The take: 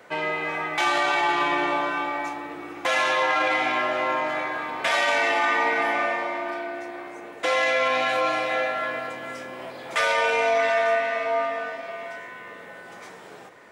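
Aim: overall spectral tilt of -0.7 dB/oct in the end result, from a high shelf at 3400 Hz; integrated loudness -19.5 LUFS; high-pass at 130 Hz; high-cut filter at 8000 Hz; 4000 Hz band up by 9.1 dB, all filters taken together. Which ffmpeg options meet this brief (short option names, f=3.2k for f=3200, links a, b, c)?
-af "highpass=130,lowpass=8k,highshelf=f=3.4k:g=6,equalizer=f=4k:t=o:g=8,volume=1dB"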